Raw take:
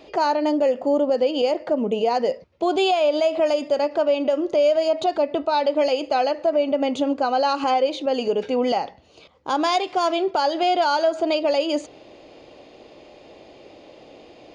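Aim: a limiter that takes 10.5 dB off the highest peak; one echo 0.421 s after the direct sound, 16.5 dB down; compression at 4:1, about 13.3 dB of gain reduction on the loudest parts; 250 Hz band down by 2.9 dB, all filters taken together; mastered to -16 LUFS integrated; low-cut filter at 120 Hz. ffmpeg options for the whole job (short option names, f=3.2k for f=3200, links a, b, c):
-af "highpass=120,equalizer=f=250:t=o:g=-3.5,acompressor=threshold=-33dB:ratio=4,alimiter=level_in=6.5dB:limit=-24dB:level=0:latency=1,volume=-6.5dB,aecho=1:1:421:0.15,volume=23dB"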